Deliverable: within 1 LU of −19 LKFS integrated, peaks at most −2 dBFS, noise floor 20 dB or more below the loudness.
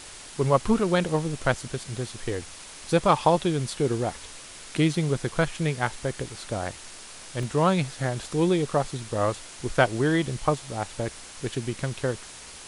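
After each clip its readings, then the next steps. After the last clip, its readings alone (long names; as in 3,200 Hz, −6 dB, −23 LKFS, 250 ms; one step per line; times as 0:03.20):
number of dropouts 2; longest dropout 1.3 ms; background noise floor −44 dBFS; target noise floor −47 dBFS; integrated loudness −26.5 LKFS; sample peak −5.0 dBFS; target loudness −19.0 LKFS
→ repair the gap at 0:01.97/0:07.43, 1.3 ms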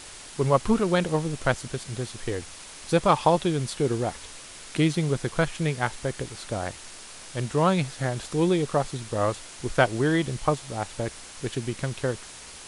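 number of dropouts 0; background noise floor −44 dBFS; target noise floor −47 dBFS
→ broadband denoise 6 dB, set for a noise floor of −44 dBFS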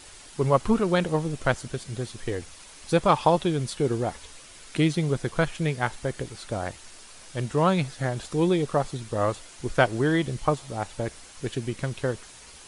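background noise floor −48 dBFS; integrated loudness −26.5 LKFS; sample peak −5.0 dBFS; target loudness −19.0 LKFS
→ level +7.5 dB
brickwall limiter −2 dBFS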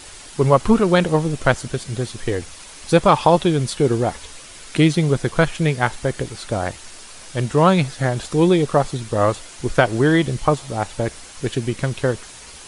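integrated loudness −19.5 LKFS; sample peak −2.0 dBFS; background noise floor −40 dBFS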